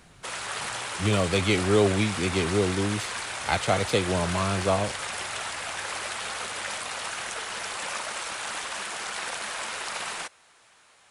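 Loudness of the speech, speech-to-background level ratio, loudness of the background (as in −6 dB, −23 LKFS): −26.0 LKFS, 6.0 dB, −32.0 LKFS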